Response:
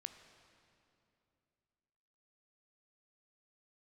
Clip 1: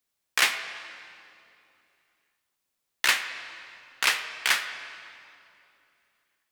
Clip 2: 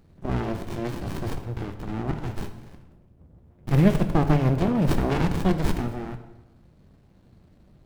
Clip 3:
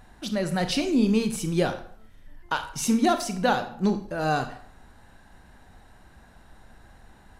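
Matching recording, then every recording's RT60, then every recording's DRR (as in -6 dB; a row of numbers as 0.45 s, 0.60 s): 1; 2.7 s, 1.0 s, 0.55 s; 8.0 dB, 7.0 dB, 8.0 dB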